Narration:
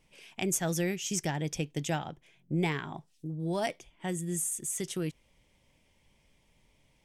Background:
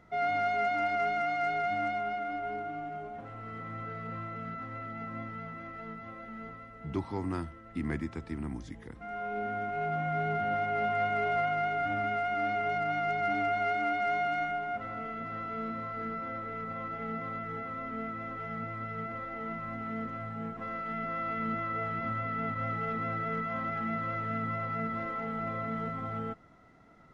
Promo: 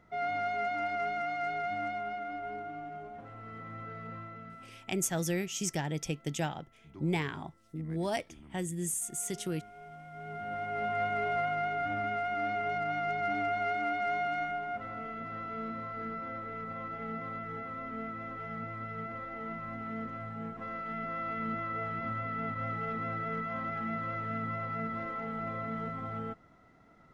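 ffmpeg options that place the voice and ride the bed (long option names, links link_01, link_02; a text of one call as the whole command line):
ffmpeg -i stem1.wav -i stem2.wav -filter_complex "[0:a]adelay=4500,volume=-1.5dB[link_01];[1:a]volume=11.5dB,afade=type=out:start_time=4.06:duration=0.8:silence=0.211349,afade=type=in:start_time=10.11:duration=0.88:silence=0.177828[link_02];[link_01][link_02]amix=inputs=2:normalize=0" out.wav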